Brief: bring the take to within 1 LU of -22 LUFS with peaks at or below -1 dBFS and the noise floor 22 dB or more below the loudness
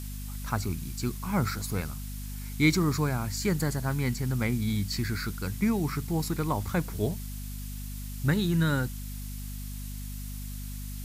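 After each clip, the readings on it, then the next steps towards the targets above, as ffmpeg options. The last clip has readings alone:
hum 50 Hz; highest harmonic 250 Hz; hum level -35 dBFS; noise floor -37 dBFS; noise floor target -53 dBFS; loudness -30.5 LUFS; peak level -11.0 dBFS; loudness target -22.0 LUFS
-> -af "bandreject=f=50:t=h:w=4,bandreject=f=100:t=h:w=4,bandreject=f=150:t=h:w=4,bandreject=f=200:t=h:w=4,bandreject=f=250:t=h:w=4"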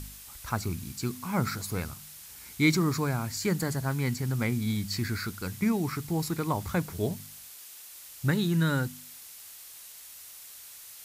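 hum not found; noise floor -48 dBFS; noise floor target -52 dBFS
-> -af "afftdn=nr=6:nf=-48"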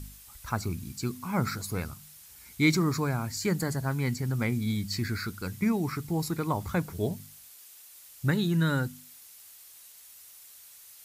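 noise floor -52 dBFS; loudness -30.0 LUFS; peak level -11.0 dBFS; loudness target -22.0 LUFS
-> -af "volume=2.51"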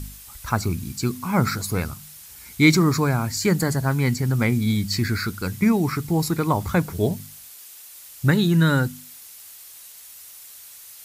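loudness -22.0 LUFS; peak level -3.0 dBFS; noise floor -44 dBFS

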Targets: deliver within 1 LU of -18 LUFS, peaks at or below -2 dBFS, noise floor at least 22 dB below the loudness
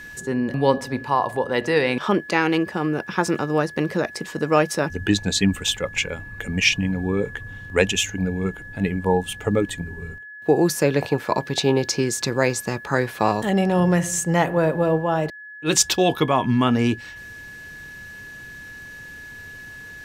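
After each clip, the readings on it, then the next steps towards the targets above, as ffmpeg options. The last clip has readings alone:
steady tone 1.7 kHz; tone level -37 dBFS; loudness -22.0 LUFS; peak level -2.5 dBFS; loudness target -18.0 LUFS
-> -af "bandreject=f=1700:w=30"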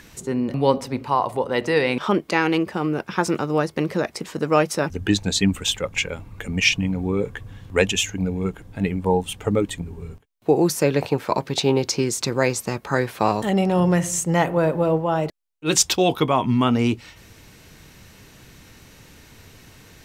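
steady tone not found; loudness -22.0 LUFS; peak level -3.0 dBFS; loudness target -18.0 LUFS
-> -af "volume=1.58,alimiter=limit=0.794:level=0:latency=1"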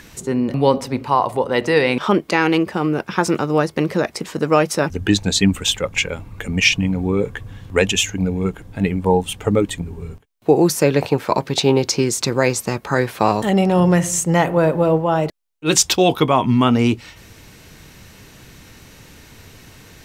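loudness -18.0 LUFS; peak level -2.0 dBFS; noise floor -45 dBFS

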